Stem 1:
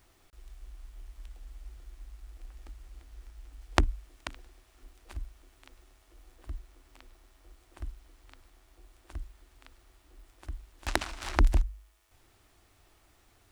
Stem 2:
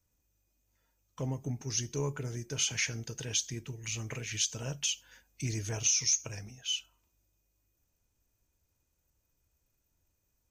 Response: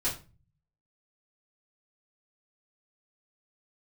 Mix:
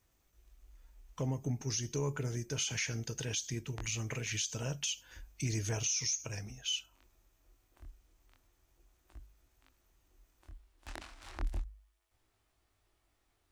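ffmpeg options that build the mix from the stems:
-filter_complex "[0:a]flanger=delay=18.5:depth=7.1:speed=0.32,volume=-10dB[link_01];[1:a]volume=1dB,asplit=2[link_02][link_03];[link_03]apad=whole_len=596083[link_04];[link_01][link_04]sidechaincompress=threshold=-50dB:ratio=6:attack=7:release=168[link_05];[link_05][link_02]amix=inputs=2:normalize=0,alimiter=level_in=1dB:limit=-24dB:level=0:latency=1:release=71,volume=-1dB"

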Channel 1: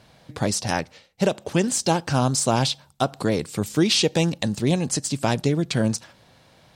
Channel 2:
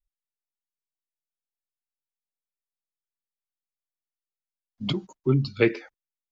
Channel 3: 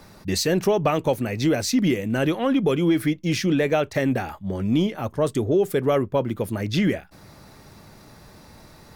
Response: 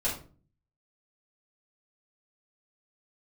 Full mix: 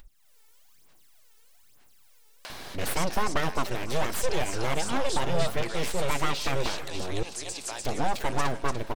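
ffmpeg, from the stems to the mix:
-filter_complex "[0:a]highpass=860,acompressor=threshold=-48dB:ratio=1.5,adelay=2450,volume=3dB,asplit=2[link_01][link_02];[link_02]volume=-9dB[link_03];[1:a]aphaser=in_gain=1:out_gain=1:delay=2.3:decay=0.71:speed=1.1:type=sinusoidal,volume=-6dB[link_04];[2:a]aeval=exprs='abs(val(0))':channel_layout=same,adelay=2500,volume=-3.5dB,asplit=3[link_05][link_06][link_07];[link_05]atrim=end=7.23,asetpts=PTS-STARTPTS,afade=type=out:start_time=7.226:duration=0.004:curve=hsin[link_08];[link_06]atrim=start=7.23:end=7.84,asetpts=PTS-STARTPTS,volume=0[link_09];[link_07]atrim=start=7.84,asetpts=PTS-STARTPTS,afade=type=in:duration=0.004:curve=hsin[link_10];[link_08][link_09][link_10]concat=n=3:v=0:a=1,asplit=2[link_11][link_12];[link_12]volume=-17.5dB[link_13];[link_01][link_04]amix=inputs=2:normalize=0,aeval=exprs='0.1*(abs(mod(val(0)/0.1+3,4)-2)-1)':channel_layout=same,alimiter=level_in=3.5dB:limit=-24dB:level=0:latency=1:release=109,volume=-3.5dB,volume=0dB[link_14];[link_03][link_13]amix=inputs=2:normalize=0,aecho=0:1:294|588|882|1176|1470|1764:1|0.46|0.212|0.0973|0.0448|0.0206[link_15];[link_11][link_14][link_15]amix=inputs=3:normalize=0,acompressor=mode=upward:threshold=-29dB:ratio=2.5"

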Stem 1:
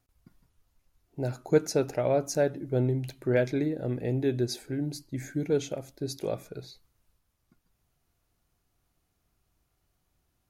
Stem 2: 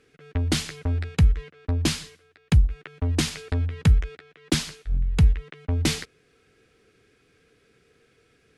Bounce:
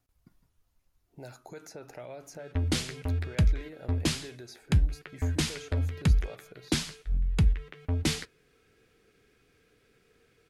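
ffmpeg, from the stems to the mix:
ffmpeg -i stem1.wav -i stem2.wav -filter_complex "[0:a]alimiter=limit=-22dB:level=0:latency=1:release=46,acrossover=split=690|2200[link_01][link_02][link_03];[link_01]acompressor=threshold=-46dB:ratio=4[link_04];[link_02]acompressor=threshold=-44dB:ratio=4[link_05];[link_03]acompressor=threshold=-49dB:ratio=4[link_06];[link_04][link_05][link_06]amix=inputs=3:normalize=0,volume=-2.5dB[link_07];[1:a]asoftclip=type=tanh:threshold=-9.5dB,flanger=delay=3.7:depth=6.5:regen=-76:speed=1:shape=triangular,adelay=2200,volume=0.5dB[link_08];[link_07][link_08]amix=inputs=2:normalize=0" out.wav

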